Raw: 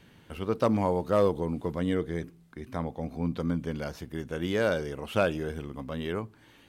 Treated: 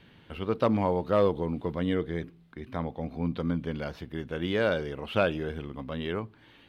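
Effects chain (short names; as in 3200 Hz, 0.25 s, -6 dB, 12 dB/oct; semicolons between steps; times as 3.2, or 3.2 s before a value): resonant high shelf 5000 Hz -10 dB, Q 1.5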